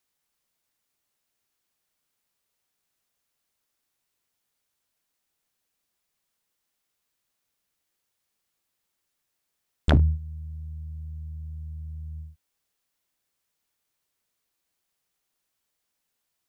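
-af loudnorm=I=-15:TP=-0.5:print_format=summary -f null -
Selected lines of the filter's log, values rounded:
Input Integrated:    -29.8 LUFS
Input True Peak:      -6.6 dBTP
Input LRA:            12.1 LU
Input Threshold:     -40.4 LUFS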